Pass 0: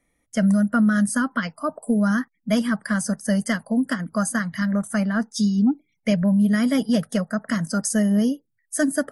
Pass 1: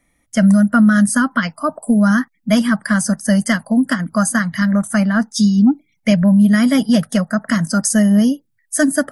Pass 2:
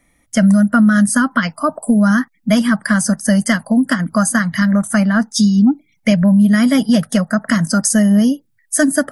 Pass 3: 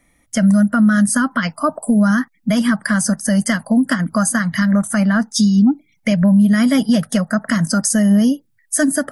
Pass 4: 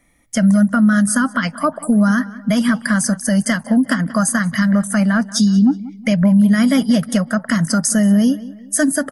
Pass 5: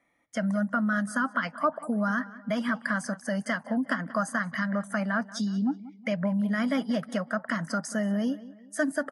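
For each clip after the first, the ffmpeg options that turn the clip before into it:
-af "equalizer=f=440:w=2.9:g=-8,volume=2.37"
-af "acompressor=threshold=0.1:ratio=1.5,volume=1.68"
-af "alimiter=limit=0.473:level=0:latency=1:release=95"
-filter_complex "[0:a]asplit=2[s0][s1];[s1]adelay=184,lowpass=f=3300:p=1,volume=0.141,asplit=2[s2][s3];[s3]adelay=184,lowpass=f=3300:p=1,volume=0.41,asplit=2[s4][s5];[s5]adelay=184,lowpass=f=3300:p=1,volume=0.41[s6];[s0][s2][s4][s6]amix=inputs=4:normalize=0"
-af "bandpass=f=960:t=q:w=0.58:csg=0,volume=0.473"

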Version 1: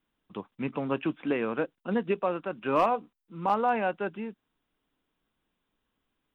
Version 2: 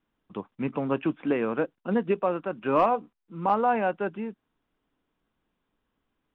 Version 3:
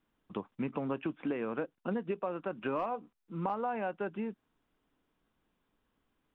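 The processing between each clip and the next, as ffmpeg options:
-af "lowpass=f=2000:p=1,volume=1.41"
-af "acompressor=threshold=0.0251:ratio=5"

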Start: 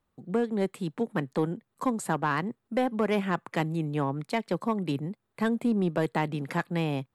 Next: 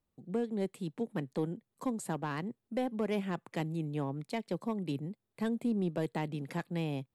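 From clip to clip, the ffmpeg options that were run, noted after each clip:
-af "equalizer=f=1300:w=1:g=-7.5,volume=0.531"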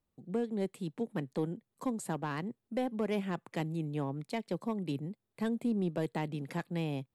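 -af anull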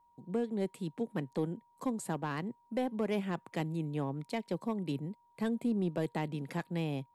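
-af "aeval=exprs='val(0)+0.000562*sin(2*PI*950*n/s)':c=same"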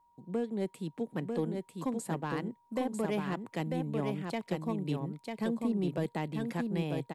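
-af "aecho=1:1:946:0.631"

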